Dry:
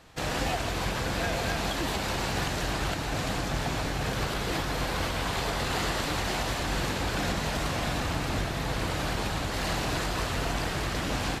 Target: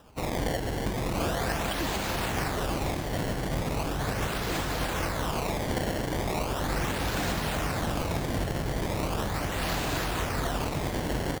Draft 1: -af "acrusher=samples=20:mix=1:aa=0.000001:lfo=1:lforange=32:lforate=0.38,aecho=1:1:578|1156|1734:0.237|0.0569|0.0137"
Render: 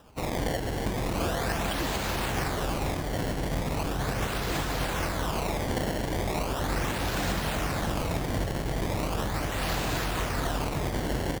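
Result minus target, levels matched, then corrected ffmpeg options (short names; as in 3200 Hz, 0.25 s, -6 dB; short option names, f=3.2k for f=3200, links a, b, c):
echo 0.359 s early
-af "acrusher=samples=20:mix=1:aa=0.000001:lfo=1:lforange=32:lforate=0.38,aecho=1:1:937|1874|2811:0.237|0.0569|0.0137"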